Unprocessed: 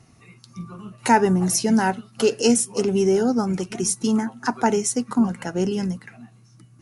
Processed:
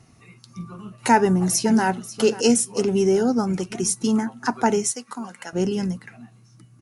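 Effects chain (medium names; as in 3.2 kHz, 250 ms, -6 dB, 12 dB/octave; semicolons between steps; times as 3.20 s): 1.11–1.86 s: echo throw 540 ms, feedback 15%, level -15.5 dB; 4.91–5.53 s: high-pass 1.3 kHz 6 dB/octave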